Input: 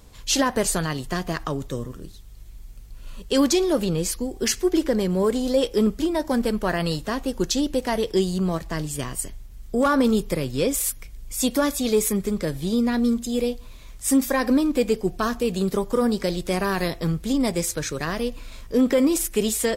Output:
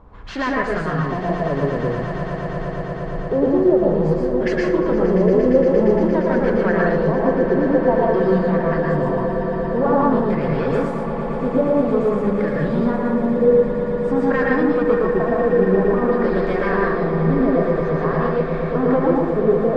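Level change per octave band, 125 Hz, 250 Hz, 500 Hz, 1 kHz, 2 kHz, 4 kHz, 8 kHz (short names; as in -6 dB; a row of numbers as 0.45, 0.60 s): +7.5 dB, +3.5 dB, +8.0 dB, +7.0 dB, +5.5 dB, under -10 dB, under -25 dB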